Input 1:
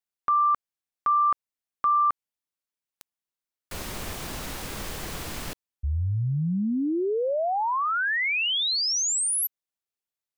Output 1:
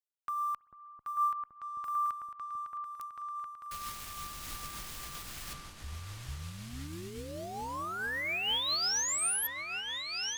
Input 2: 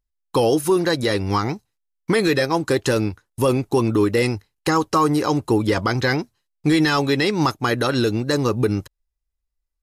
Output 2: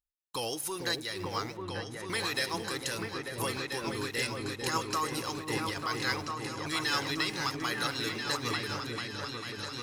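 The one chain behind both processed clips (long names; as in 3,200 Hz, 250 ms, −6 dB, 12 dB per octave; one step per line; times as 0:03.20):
dynamic equaliser 150 Hz, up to −8 dB, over −35 dBFS, Q 0.83
spring reverb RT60 3.4 s, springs 60 ms, chirp 35 ms, DRR 17.5 dB
in parallel at −6 dB: centre clipping without the shift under −32 dBFS
on the sum: guitar amp tone stack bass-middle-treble 5-5-5
on a send: echo whose low-pass opens from repeat to repeat 445 ms, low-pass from 400 Hz, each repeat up 2 octaves, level 0 dB
on the sum: amplitude modulation by smooth noise 8.7 Hz, depth 60%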